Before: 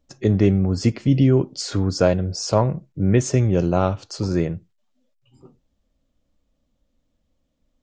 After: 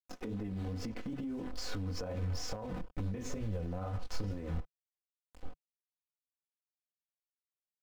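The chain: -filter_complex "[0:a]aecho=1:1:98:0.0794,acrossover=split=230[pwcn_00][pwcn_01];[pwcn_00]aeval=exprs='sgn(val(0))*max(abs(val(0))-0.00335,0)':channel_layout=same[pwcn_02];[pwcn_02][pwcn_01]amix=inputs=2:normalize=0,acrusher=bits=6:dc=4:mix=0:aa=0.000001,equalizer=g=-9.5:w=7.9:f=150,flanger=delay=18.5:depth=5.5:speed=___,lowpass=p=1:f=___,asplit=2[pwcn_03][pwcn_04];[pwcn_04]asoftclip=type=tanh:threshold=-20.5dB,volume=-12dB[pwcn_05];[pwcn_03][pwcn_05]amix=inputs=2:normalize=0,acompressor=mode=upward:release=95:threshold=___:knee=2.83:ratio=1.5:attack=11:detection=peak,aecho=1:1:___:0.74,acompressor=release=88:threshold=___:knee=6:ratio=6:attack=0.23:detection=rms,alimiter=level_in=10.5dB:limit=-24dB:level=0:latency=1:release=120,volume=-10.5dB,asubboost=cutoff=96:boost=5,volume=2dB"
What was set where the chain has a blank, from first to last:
2.3, 1300, -47dB, 4, -28dB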